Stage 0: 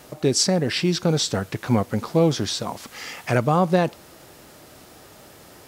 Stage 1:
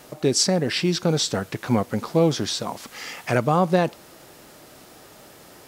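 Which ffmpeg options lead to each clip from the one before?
-af "equalizer=f=74:t=o:w=1.3:g=-6"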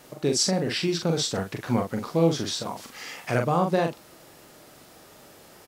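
-filter_complex "[0:a]asplit=2[s0][s1];[s1]adelay=42,volume=0.562[s2];[s0][s2]amix=inputs=2:normalize=0,volume=0.596"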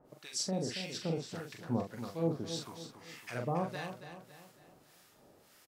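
-filter_complex "[0:a]acrossover=split=1100[s0][s1];[s0]aeval=exprs='val(0)*(1-1/2+1/2*cos(2*PI*1.7*n/s))':c=same[s2];[s1]aeval=exprs='val(0)*(1-1/2-1/2*cos(2*PI*1.7*n/s))':c=same[s3];[s2][s3]amix=inputs=2:normalize=0,asplit=2[s4][s5];[s5]aecho=0:1:277|554|831|1108|1385:0.316|0.136|0.0585|0.0251|0.0108[s6];[s4][s6]amix=inputs=2:normalize=0,volume=0.376"

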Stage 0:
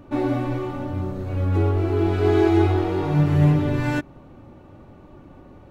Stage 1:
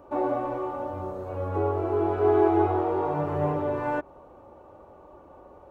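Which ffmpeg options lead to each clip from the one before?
-filter_complex "[0:a]highpass=45,acrossover=split=2800[s0][s1];[s1]acompressor=threshold=0.00141:ratio=4:attack=1:release=60[s2];[s0][s2]amix=inputs=2:normalize=0,equalizer=f=125:t=o:w=1:g=-12,equalizer=f=250:t=o:w=1:g=-7,equalizer=f=500:t=o:w=1:g=8,equalizer=f=1000:t=o:w=1:g=8,equalizer=f=2000:t=o:w=1:g=-6,equalizer=f=4000:t=o:w=1:g=-6,volume=0.596"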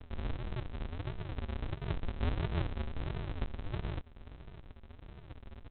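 -af "acompressor=threshold=0.0126:ratio=2.5,aresample=8000,acrusher=samples=41:mix=1:aa=0.000001:lfo=1:lforange=24.6:lforate=1.5,aresample=44100"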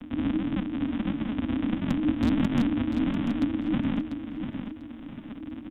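-af "aeval=exprs='0.0473*(abs(mod(val(0)/0.0473+3,4)-2)-1)':c=same,afreqshift=-320,aecho=1:1:694|1388|2082:0.398|0.0955|0.0229,volume=2.82"

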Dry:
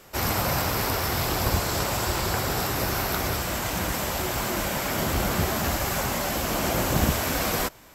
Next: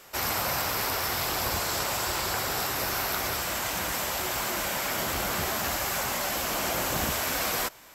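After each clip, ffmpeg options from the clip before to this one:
-filter_complex "[0:a]lowshelf=f=420:g=-11,asplit=2[s0][s1];[s1]alimiter=level_in=1.06:limit=0.0631:level=0:latency=1,volume=0.944,volume=0.794[s2];[s0][s2]amix=inputs=2:normalize=0,volume=0.668"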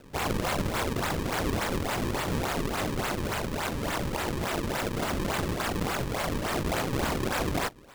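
-af "acrusher=samples=36:mix=1:aa=0.000001:lfo=1:lforange=57.6:lforate=3.5"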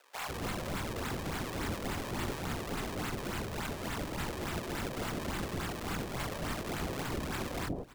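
-filter_complex "[0:a]acrossover=split=600[s0][s1];[s0]adelay=150[s2];[s2][s1]amix=inputs=2:normalize=0,alimiter=limit=0.0841:level=0:latency=1:release=24,volume=0.631"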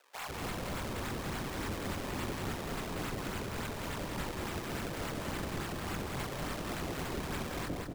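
-af "aecho=1:1:186|372|558:0.631|0.158|0.0394,volume=0.75"

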